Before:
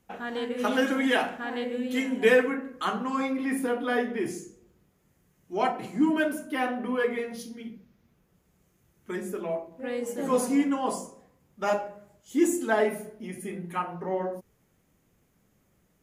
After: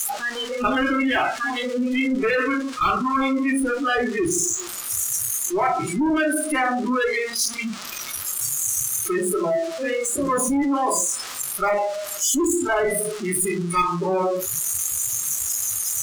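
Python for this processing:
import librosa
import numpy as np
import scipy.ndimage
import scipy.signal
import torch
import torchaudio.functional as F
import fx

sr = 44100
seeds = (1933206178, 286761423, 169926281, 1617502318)

p1 = x + 0.5 * 10.0 ** (-16.5 / 20.0) * np.diff(np.sign(x), prepend=np.sign(x[:1]))
p2 = scipy.signal.sosfilt(scipy.signal.butter(2, 7000.0, 'lowpass', fs=sr, output='sos'), p1)
p3 = fx.low_shelf(p2, sr, hz=64.0, db=-10.5)
p4 = p3 + fx.echo_single(p3, sr, ms=105, db=-21.0, dry=0)
p5 = 10.0 ** (-23.5 / 20.0) * np.tanh(p4 / 10.0 ** (-23.5 / 20.0))
p6 = fx.graphic_eq_31(p5, sr, hz=(200, 500, 1250), db=(-6, -4, 8))
p7 = fx.rider(p6, sr, range_db=10, speed_s=0.5)
p8 = p6 + (p7 * 10.0 ** (-1.0 / 20.0))
p9 = fx.cheby_harmonics(p8, sr, harmonics=(2, 4, 5), levels_db=(-11, -13, -22), full_scale_db=-15.0)
p10 = fx.noise_reduce_blind(p9, sr, reduce_db=21)
y = fx.env_flatten(p10, sr, amount_pct=50)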